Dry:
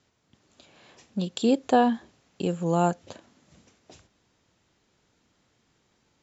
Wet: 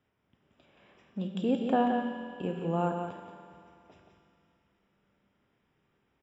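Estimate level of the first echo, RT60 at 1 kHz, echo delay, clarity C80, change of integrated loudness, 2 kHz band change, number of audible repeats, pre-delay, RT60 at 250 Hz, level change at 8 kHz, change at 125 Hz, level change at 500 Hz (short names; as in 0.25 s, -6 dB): -6.5 dB, 2.6 s, 0.176 s, 2.5 dB, -5.5 dB, -4.5 dB, 1, 5 ms, 2.6 s, n/a, -5.5 dB, -5.5 dB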